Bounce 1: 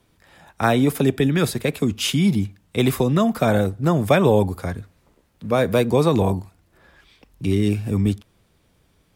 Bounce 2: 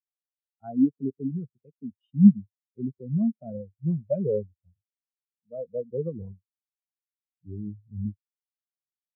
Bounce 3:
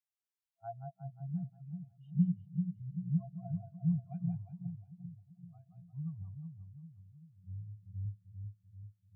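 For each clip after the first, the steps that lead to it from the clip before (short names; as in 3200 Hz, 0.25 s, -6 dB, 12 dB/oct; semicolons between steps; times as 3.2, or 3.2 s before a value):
spectral expander 4:1; gain -1 dB
split-band echo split 360 Hz, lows 0.388 s, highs 0.178 s, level -6 dB; FFT band-reject 190–670 Hz; gain -4 dB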